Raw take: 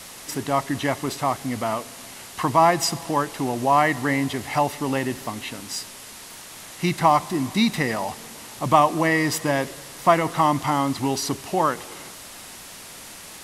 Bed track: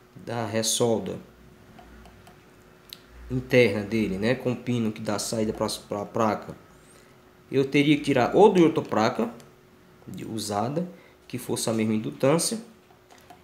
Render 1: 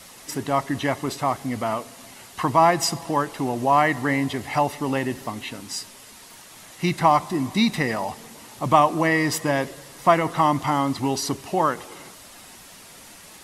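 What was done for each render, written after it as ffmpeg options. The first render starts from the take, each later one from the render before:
-af "afftdn=nr=6:nf=-41"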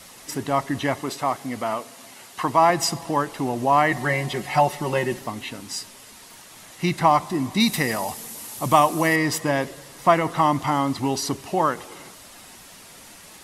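-filter_complex "[0:a]asettb=1/sr,asplit=3[a][b][c];[a]atrim=end=1.014[d];[b]atrim=start=1.01:end=2.7,asetpts=PTS-STARTPTS,afade=t=in:d=0.004:c=qsin,afade=t=out:st=1.686:d=0.004:c=qsin,highpass=f=220:p=1[e];[c]atrim=start=2.696[f];[d][e]acrossfade=d=0.004:c1=hsin:c2=qsin[g];[g][f]acrossfade=d=0.004:c1=qsin:c2=hsin,asettb=1/sr,asplit=3[h][i][j];[h]atrim=end=3.914[k];[i]atrim=start=3.91:end=5.19,asetpts=PTS-STARTPTS,afade=t=in:d=0.004:c=qsin,afade=t=out:st=1.276:d=0.004:c=qsin,aecho=1:1:5.5:0.81,atrim=end_sample=56448[l];[j]atrim=start=5.186[m];[k][l]acrossfade=d=0.004:c1=hsin:c2=qsin[n];[n][m]acrossfade=d=0.004:c1=qsin:c2=hsin,asettb=1/sr,asplit=3[o][p][q];[o]atrim=end=7.604[r];[p]atrim=start=7.6:end=9.16,asetpts=PTS-STARTPTS,afade=t=in:d=0.004:c=qsin,afade=t=out:st=1.556:d=0.004:c=qsin,aemphasis=mode=production:type=50fm[s];[q]atrim=start=9.156[t];[r][s]acrossfade=d=0.004:c1=hsin:c2=qsin[u];[u][t]acrossfade=d=0.004:c1=qsin:c2=hsin"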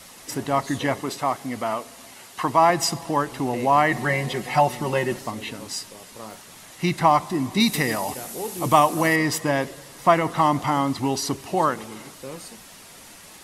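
-filter_complex "[1:a]volume=-16dB[a];[0:a][a]amix=inputs=2:normalize=0"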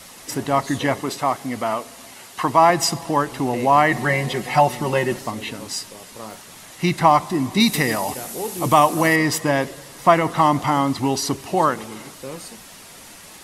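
-af "volume=3dB,alimiter=limit=-2dB:level=0:latency=1"

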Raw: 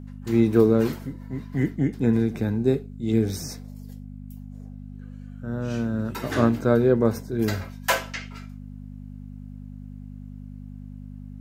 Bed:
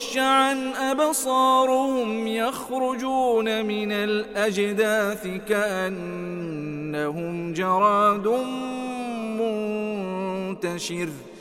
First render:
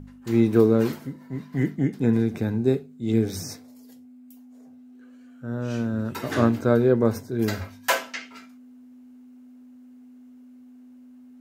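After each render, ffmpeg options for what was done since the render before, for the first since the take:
-af "bandreject=f=50:t=h:w=4,bandreject=f=100:t=h:w=4,bandreject=f=150:t=h:w=4,bandreject=f=200:t=h:w=4"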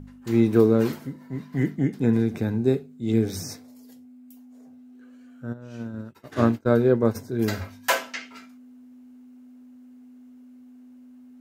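-filter_complex "[0:a]asplit=3[a][b][c];[a]afade=t=out:st=5.52:d=0.02[d];[b]agate=range=-33dB:threshold=-20dB:ratio=3:release=100:detection=peak,afade=t=in:st=5.52:d=0.02,afade=t=out:st=7.14:d=0.02[e];[c]afade=t=in:st=7.14:d=0.02[f];[d][e][f]amix=inputs=3:normalize=0"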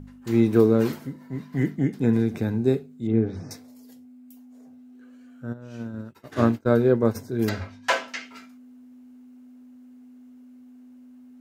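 -filter_complex "[0:a]asettb=1/sr,asplit=3[a][b][c];[a]atrim=end=3.074[d];[b]atrim=start=3.07:end=3.51,asetpts=PTS-STARTPTS,afade=t=in:d=0.004:c=qsin,afade=t=out:st=0.436:d=0.004:c=qsin,lowpass=1.6k[e];[c]atrim=start=3.506[f];[d][e]acrossfade=d=0.004:c1=hsin:c2=qsin[g];[g][f]acrossfade=d=0.004:c1=qsin:c2=hsin,asettb=1/sr,asplit=3[h][i][j];[h]atrim=end=7.494[k];[i]atrim=start=7.49:end=8.08,asetpts=PTS-STARTPTS,afade=t=in:d=0.004:c=qsin,afade=t=out:st=0.586:d=0.004:c=qsin,lowpass=5.3k[l];[j]atrim=start=8.076[m];[k][l]acrossfade=d=0.004:c1=hsin:c2=qsin[n];[n][m]acrossfade=d=0.004:c1=qsin:c2=hsin"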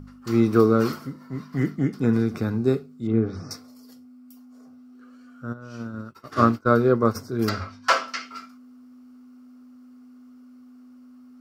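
-af "superequalizer=10b=3.55:14b=2.24"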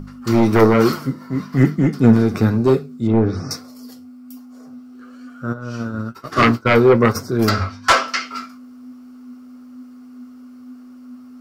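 -af "aeval=exprs='0.75*sin(PI/2*3.16*val(0)/0.75)':c=same,flanger=delay=5.1:depth=6.3:regen=63:speed=1.1:shape=triangular"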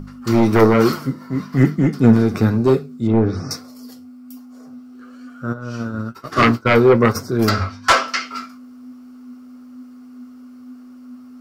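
-af anull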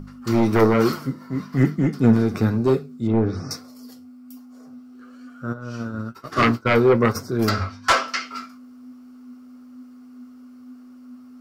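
-af "volume=-4dB"

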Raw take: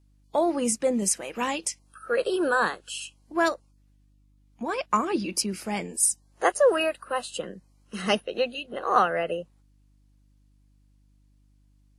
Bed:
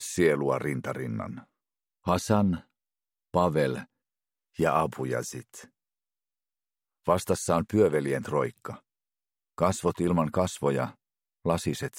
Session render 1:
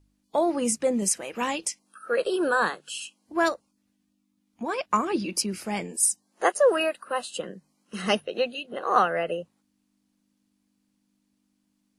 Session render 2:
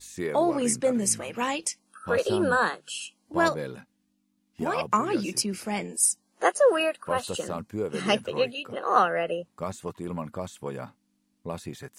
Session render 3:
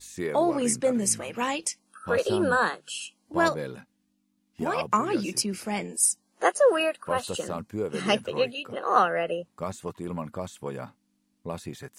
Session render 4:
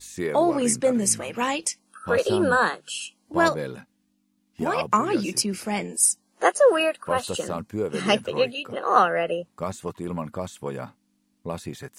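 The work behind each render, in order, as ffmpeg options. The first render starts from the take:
-af "bandreject=f=50:t=h:w=4,bandreject=f=100:t=h:w=4,bandreject=f=150:t=h:w=4"
-filter_complex "[1:a]volume=-8.5dB[a];[0:a][a]amix=inputs=2:normalize=0"
-af anull
-af "volume=3dB"

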